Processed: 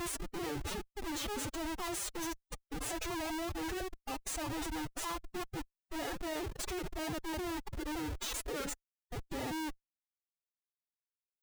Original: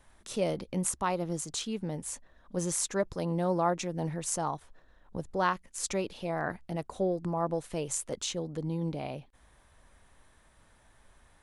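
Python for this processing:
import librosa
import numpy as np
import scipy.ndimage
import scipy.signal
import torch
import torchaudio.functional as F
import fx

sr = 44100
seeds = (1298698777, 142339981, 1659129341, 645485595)

y = fx.block_reorder(x, sr, ms=194.0, group=5)
y = fx.hum_notches(y, sr, base_hz=50, count=9)
y = y + 0.82 * np.pad(y, (int(4.5 * sr / 1000.0), 0))[:len(y)]
y = fx.schmitt(y, sr, flips_db=-38.5)
y = fx.pitch_keep_formants(y, sr, semitones=11.0)
y = F.gain(torch.from_numpy(y), -4.5).numpy()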